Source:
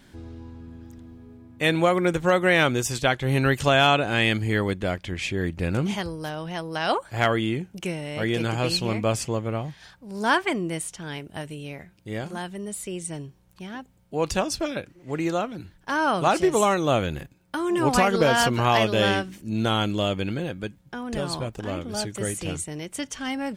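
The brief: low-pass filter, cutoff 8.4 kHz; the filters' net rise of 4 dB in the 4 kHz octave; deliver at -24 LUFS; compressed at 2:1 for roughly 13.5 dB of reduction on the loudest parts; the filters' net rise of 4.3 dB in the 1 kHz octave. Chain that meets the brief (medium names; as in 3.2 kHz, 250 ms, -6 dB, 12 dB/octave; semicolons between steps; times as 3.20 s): low-pass 8.4 kHz; peaking EQ 1 kHz +5.5 dB; peaking EQ 4 kHz +5 dB; compression 2:1, threshold -38 dBFS; trim +10 dB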